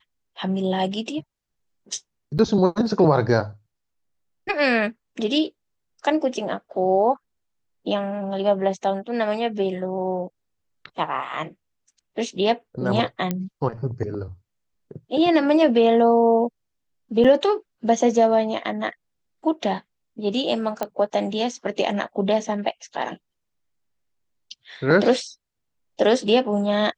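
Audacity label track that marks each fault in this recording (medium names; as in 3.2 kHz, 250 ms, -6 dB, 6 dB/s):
2.380000	2.390000	dropout 8.7 ms
13.310000	13.310000	pop -11 dBFS
17.240000	17.250000	dropout 5.9 ms
20.830000	20.830000	pop -12 dBFS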